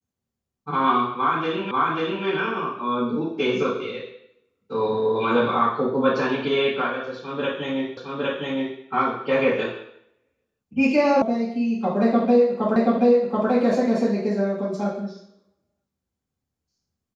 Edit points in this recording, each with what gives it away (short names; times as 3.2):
1.71 repeat of the last 0.54 s
7.97 repeat of the last 0.81 s
11.22 sound cut off
12.76 repeat of the last 0.73 s